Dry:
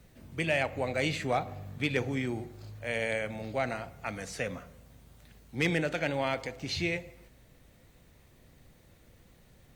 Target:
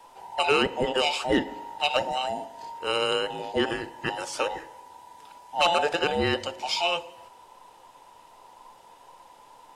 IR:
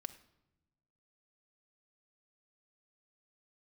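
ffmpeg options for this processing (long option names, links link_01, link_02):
-af "afftfilt=real='real(if(between(b,1,1008),(2*floor((b-1)/48)+1)*48-b,b),0)':imag='imag(if(between(b,1,1008),(2*floor((b-1)/48)+1)*48-b,b),0)*if(between(b,1,1008),-1,1)':win_size=2048:overlap=0.75,lowpass=frequency=12000:width=0.5412,lowpass=frequency=12000:width=1.3066,adynamicequalizer=threshold=0.00562:dfrequency=910:dqfactor=1.4:tfrequency=910:tqfactor=1.4:attack=5:release=100:ratio=0.375:range=3:mode=cutabove:tftype=bell,volume=7dB"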